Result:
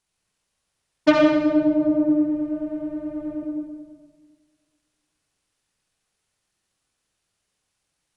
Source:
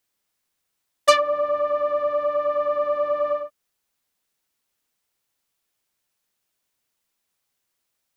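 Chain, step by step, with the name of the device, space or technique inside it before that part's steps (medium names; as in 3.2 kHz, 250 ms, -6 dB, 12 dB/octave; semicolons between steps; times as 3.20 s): 2.09–3.42 s: graphic EQ 250/500/1000/2000 Hz -9/-8/-8/-7 dB; monster voice (pitch shift -11.5 st; bass shelf 170 Hz +7.5 dB; reverberation RT60 1.5 s, pre-delay 54 ms, DRR -1 dB); trim -2 dB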